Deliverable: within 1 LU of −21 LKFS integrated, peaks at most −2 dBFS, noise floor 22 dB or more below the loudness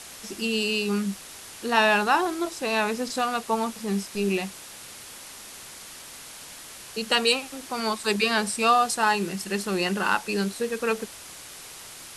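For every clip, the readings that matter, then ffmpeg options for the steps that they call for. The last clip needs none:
background noise floor −43 dBFS; target noise floor −47 dBFS; integrated loudness −25.0 LKFS; sample peak −7.0 dBFS; target loudness −21.0 LKFS
→ -af "afftdn=noise_reduction=6:noise_floor=-43"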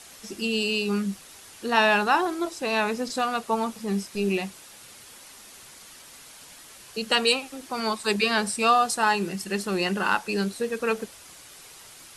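background noise floor −48 dBFS; integrated loudness −25.0 LKFS; sample peak −7.0 dBFS; target loudness −21.0 LKFS
→ -af "volume=4dB"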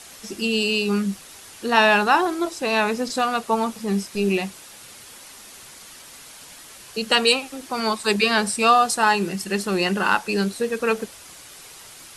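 integrated loudness −21.0 LKFS; sample peak −3.0 dBFS; background noise floor −44 dBFS

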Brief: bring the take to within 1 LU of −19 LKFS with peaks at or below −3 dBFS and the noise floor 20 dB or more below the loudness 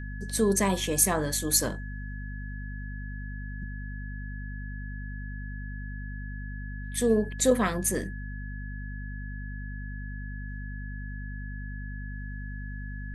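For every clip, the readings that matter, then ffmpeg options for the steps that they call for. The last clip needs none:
mains hum 50 Hz; hum harmonics up to 250 Hz; level of the hum −34 dBFS; interfering tone 1,700 Hz; level of the tone −44 dBFS; integrated loudness −31.0 LKFS; sample peak −7.0 dBFS; target loudness −19.0 LKFS
→ -af "bandreject=frequency=50:width_type=h:width=6,bandreject=frequency=100:width_type=h:width=6,bandreject=frequency=150:width_type=h:width=6,bandreject=frequency=200:width_type=h:width=6,bandreject=frequency=250:width_type=h:width=6"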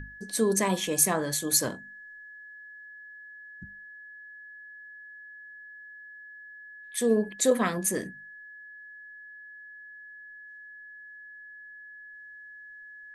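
mains hum none found; interfering tone 1,700 Hz; level of the tone −44 dBFS
→ -af "bandreject=frequency=1700:width=30"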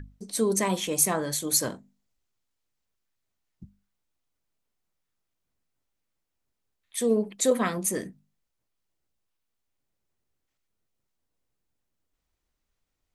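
interfering tone none found; integrated loudness −26.0 LKFS; sample peak −7.0 dBFS; target loudness −19.0 LKFS
→ -af "volume=7dB,alimiter=limit=-3dB:level=0:latency=1"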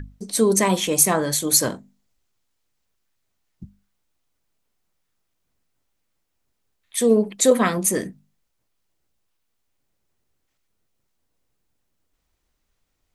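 integrated loudness −19.0 LKFS; sample peak −3.0 dBFS; background noise floor −74 dBFS

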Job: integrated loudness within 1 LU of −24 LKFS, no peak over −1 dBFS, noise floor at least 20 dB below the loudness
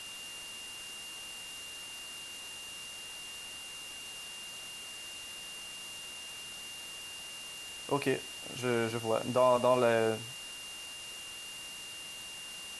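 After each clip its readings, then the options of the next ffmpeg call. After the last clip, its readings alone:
interfering tone 2,800 Hz; level of the tone −44 dBFS; background noise floor −45 dBFS; target noise floor −56 dBFS; integrated loudness −36.0 LKFS; sample peak −15.0 dBFS; target loudness −24.0 LKFS
→ -af "bandreject=frequency=2800:width=30"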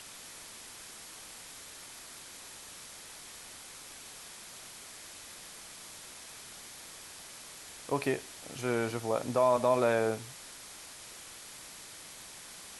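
interfering tone none found; background noise floor −49 dBFS; target noise floor −57 dBFS
→ -af "afftdn=noise_reduction=8:noise_floor=-49"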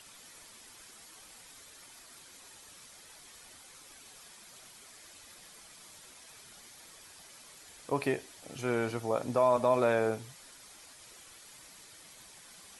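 background noise floor −54 dBFS; integrated loudness −30.5 LKFS; sample peak −15.0 dBFS; target loudness −24.0 LKFS
→ -af "volume=6.5dB"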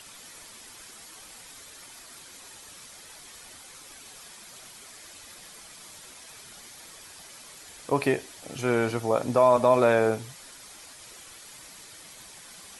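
integrated loudness −24.0 LKFS; sample peak −8.5 dBFS; background noise floor −48 dBFS

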